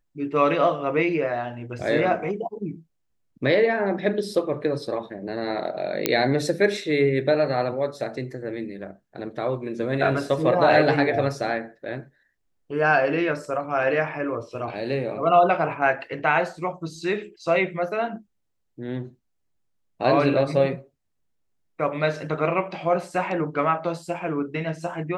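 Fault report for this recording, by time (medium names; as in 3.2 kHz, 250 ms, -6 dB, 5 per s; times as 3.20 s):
6.06 s: pop -3 dBFS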